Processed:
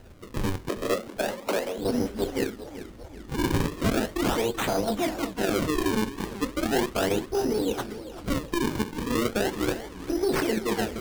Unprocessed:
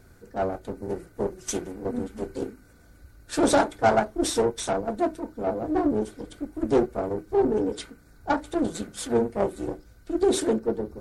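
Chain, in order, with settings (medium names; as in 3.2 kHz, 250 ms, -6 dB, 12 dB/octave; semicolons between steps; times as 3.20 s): in parallel at +2.5 dB: compressor with a negative ratio -28 dBFS, ratio -0.5; on the sum: decimation with a swept rate 38×, swing 160% 0.37 Hz; flange 1.8 Hz, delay 2.3 ms, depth 6.2 ms, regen -78%; 0.69–1.78 s: frequency shift +180 Hz; modulated delay 392 ms, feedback 53%, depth 218 cents, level -13.5 dB; trim -1 dB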